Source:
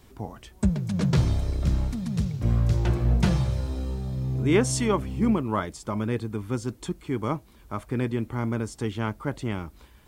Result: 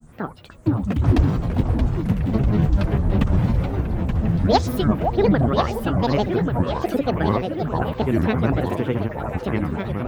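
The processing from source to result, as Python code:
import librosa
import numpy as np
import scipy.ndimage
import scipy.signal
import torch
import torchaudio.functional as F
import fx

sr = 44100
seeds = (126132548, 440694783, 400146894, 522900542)

p1 = scipy.signal.sosfilt(scipy.signal.butter(2, 64.0, 'highpass', fs=sr, output='sos'), x)
p2 = fx.band_shelf(p1, sr, hz=5600.0, db=-15.0, octaves=1.7)
p3 = fx.rider(p2, sr, range_db=5, speed_s=2.0)
p4 = p2 + (p3 * librosa.db_to_amplitude(0.5))
p5 = fx.granulator(p4, sr, seeds[0], grain_ms=100.0, per_s=20.0, spray_ms=100.0, spread_st=12)
p6 = p5 + fx.echo_stepped(p5, sr, ms=521, hz=710.0, octaves=1.4, feedback_pct=70, wet_db=-5.0, dry=0)
y = fx.echo_pitch(p6, sr, ms=484, semitones=-2, count=3, db_per_echo=-6.0)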